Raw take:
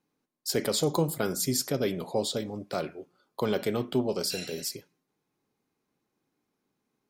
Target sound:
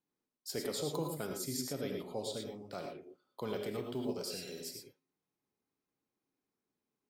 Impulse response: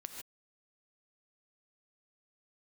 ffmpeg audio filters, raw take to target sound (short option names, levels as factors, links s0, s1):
-filter_complex "[0:a]asettb=1/sr,asplit=3[s0][s1][s2];[s0]atrim=end=3.674[s3];[s1]atrim=start=3.67:end=4.52,asetpts=PTS-STARTPTS,afade=t=in:d=0.004:c=qsin,afade=t=out:st=0.846:d=0.004:c=qsin,acrusher=bits=9:mode=log:mix=0:aa=0.000001[s4];[s2]atrim=start=4.516[s5];[s3][s4]acrossfade=d=0.004:c1=hsin:c2=qsin[s6];[s6][s5]acrossfade=d=0.004:c1=qsin:c2=hsin[s7];[1:a]atrim=start_sample=2205,asetrate=57330,aresample=44100[s8];[s7][s8]afir=irnorm=-1:irlink=0,volume=0.596"